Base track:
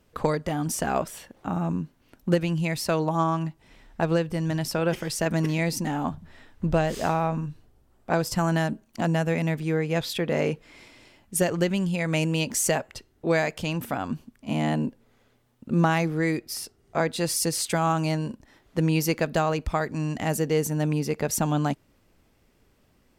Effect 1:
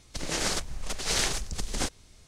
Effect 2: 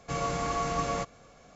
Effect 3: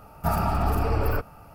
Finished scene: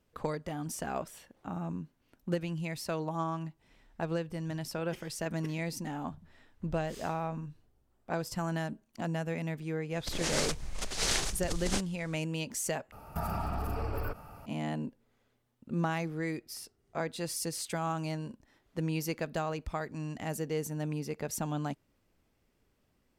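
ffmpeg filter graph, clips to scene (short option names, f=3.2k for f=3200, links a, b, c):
-filter_complex "[0:a]volume=-10dB[a];[3:a]acompressor=threshold=-28dB:ratio=6:attack=3.2:release=140:knee=1:detection=peak[b];[a]asplit=2[c][d];[c]atrim=end=12.924[e];[b]atrim=end=1.54,asetpts=PTS-STARTPTS,volume=-2dB[f];[d]atrim=start=14.456[g];[1:a]atrim=end=2.27,asetpts=PTS-STARTPTS,volume=-3dB,afade=t=in:d=0.004:c=hsin,afade=t=out:st=2.266:d=0.004:c=hsin,adelay=9920[h];[e][f]acrossfade=d=0.004:c1=hsin:c2=hsin[i];[i][g]acrossfade=d=0.004:c1=hsin:c2=hsin[j];[j][h]amix=inputs=2:normalize=0"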